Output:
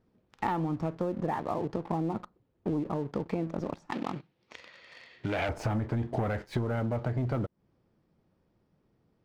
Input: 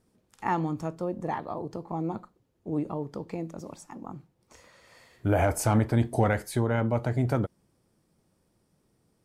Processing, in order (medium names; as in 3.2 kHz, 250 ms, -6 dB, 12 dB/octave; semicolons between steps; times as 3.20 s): distance through air 230 m; waveshaping leveller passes 2; compression 10:1, threshold -31 dBFS, peak gain reduction 15.5 dB; 3.92–5.49 s: frequency weighting D; trim +3.5 dB